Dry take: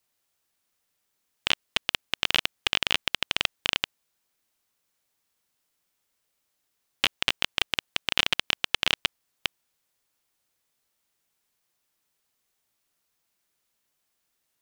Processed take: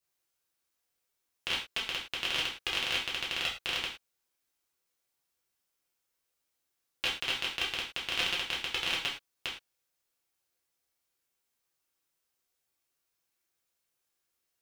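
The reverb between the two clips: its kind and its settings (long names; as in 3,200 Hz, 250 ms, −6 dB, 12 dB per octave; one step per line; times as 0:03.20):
reverb whose tail is shaped and stops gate 140 ms falling, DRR −5 dB
level −11.5 dB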